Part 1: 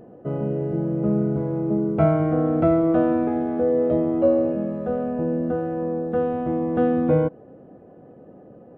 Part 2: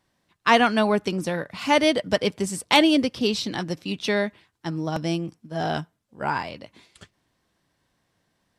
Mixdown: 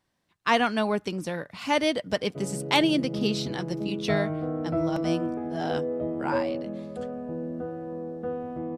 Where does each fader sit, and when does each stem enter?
−9.5, −5.0 decibels; 2.10, 0.00 seconds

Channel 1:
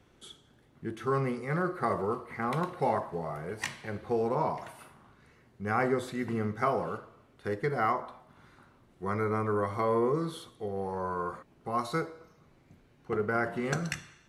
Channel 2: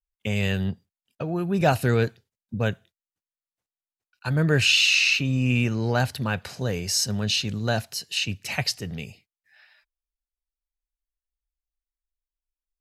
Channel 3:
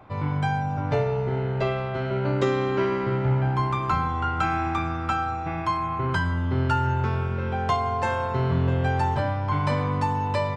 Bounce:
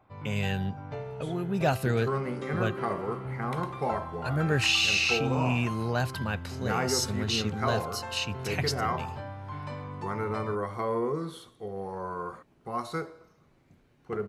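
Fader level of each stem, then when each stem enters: −2.0, −5.5, −14.0 decibels; 1.00, 0.00, 0.00 seconds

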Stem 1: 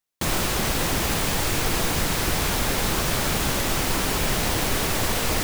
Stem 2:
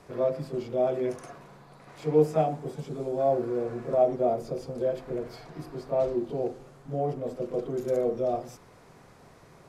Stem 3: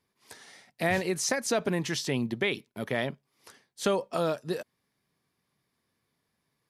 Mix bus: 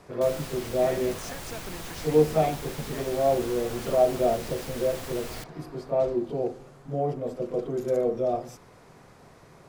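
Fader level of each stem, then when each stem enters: −15.5, +1.5, −13.5 decibels; 0.00, 0.00, 0.00 seconds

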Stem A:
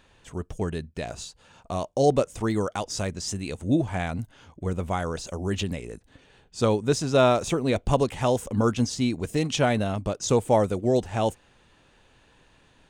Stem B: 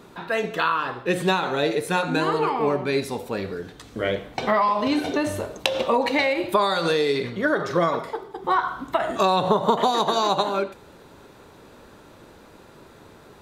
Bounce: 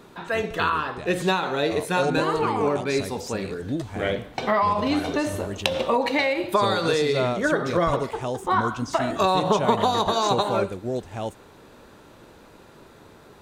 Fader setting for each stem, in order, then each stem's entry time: −6.0, −1.0 decibels; 0.00, 0.00 seconds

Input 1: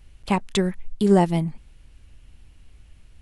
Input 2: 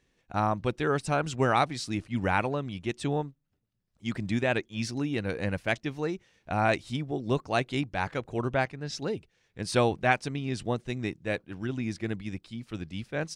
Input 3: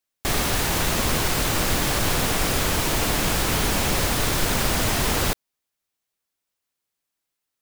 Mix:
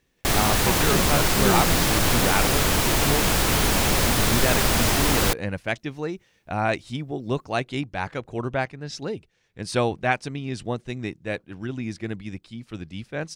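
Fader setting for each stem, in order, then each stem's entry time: −7.0, +1.5, +1.5 decibels; 0.35, 0.00, 0.00 seconds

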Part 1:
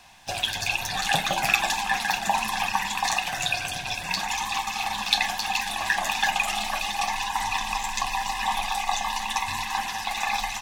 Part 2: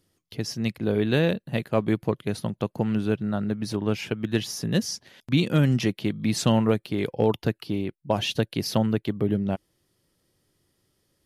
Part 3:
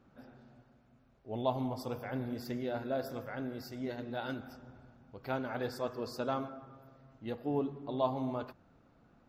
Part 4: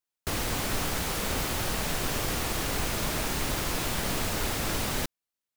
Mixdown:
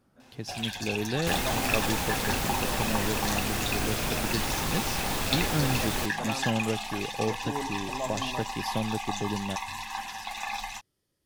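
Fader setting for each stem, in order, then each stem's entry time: −7.5, −8.0, −3.0, −1.0 decibels; 0.20, 0.00, 0.00, 1.00 seconds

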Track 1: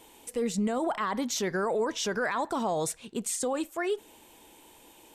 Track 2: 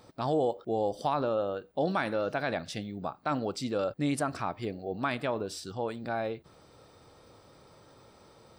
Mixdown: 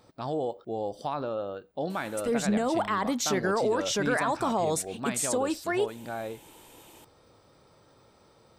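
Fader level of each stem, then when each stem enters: +2.0, −3.0 decibels; 1.90, 0.00 seconds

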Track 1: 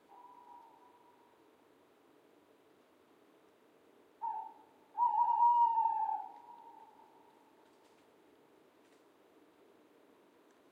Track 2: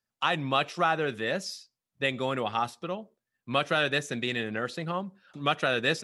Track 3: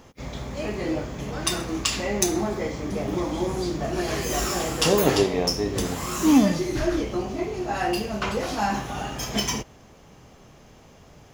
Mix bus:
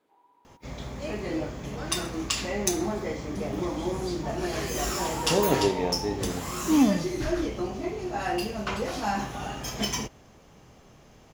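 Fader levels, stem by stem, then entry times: −5.5 dB, muted, −3.5 dB; 0.00 s, muted, 0.45 s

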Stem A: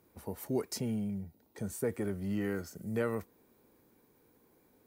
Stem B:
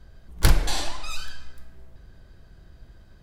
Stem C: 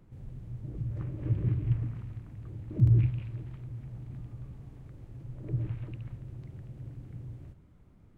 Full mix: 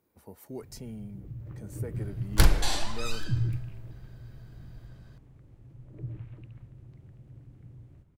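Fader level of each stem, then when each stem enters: −7.5, −2.0, −6.5 decibels; 0.00, 1.95, 0.50 seconds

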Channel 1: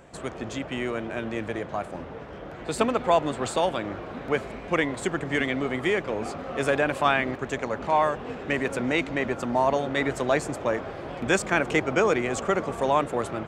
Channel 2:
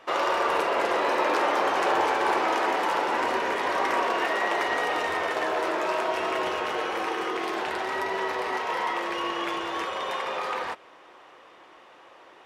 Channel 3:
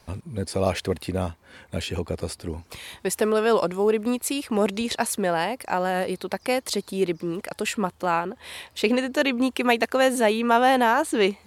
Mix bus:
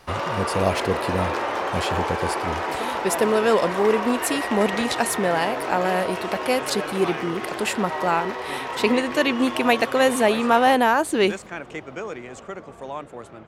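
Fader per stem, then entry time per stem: −10.5, −2.0, +1.5 decibels; 0.00, 0.00, 0.00 seconds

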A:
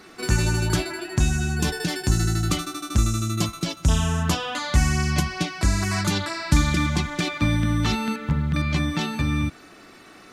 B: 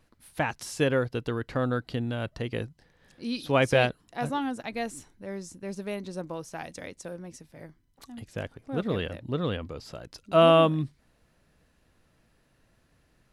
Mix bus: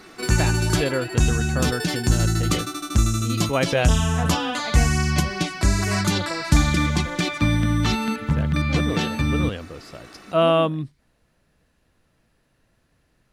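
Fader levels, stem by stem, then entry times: +1.5, +0.5 decibels; 0.00, 0.00 seconds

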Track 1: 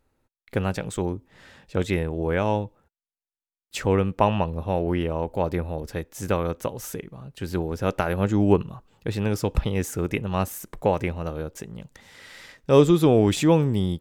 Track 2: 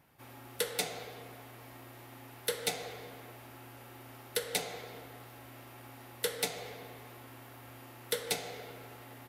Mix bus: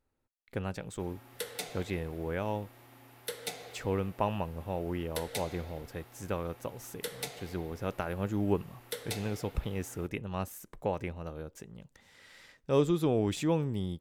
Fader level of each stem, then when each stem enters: −10.5, −5.0 decibels; 0.00, 0.80 seconds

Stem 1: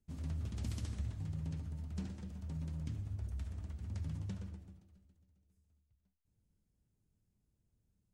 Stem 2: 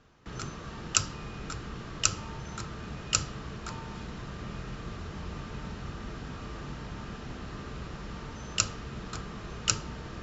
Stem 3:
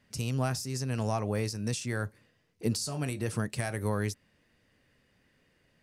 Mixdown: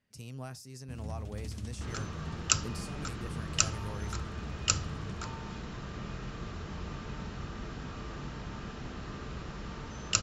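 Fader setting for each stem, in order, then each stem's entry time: −0.5, −1.0, −12.5 decibels; 0.80, 1.55, 0.00 seconds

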